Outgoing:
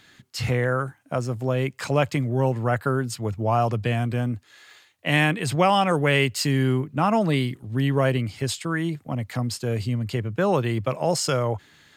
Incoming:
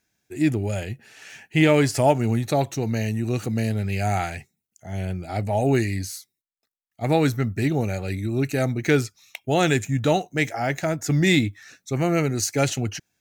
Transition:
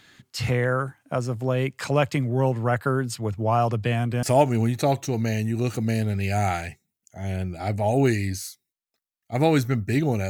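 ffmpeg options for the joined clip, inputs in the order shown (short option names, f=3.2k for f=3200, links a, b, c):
-filter_complex "[0:a]apad=whole_dur=10.29,atrim=end=10.29,atrim=end=4.232[a];[1:a]atrim=start=1.918:end=7.98[b];[a][b]acrossfade=d=0.004:c1=hsin:c2=hsin"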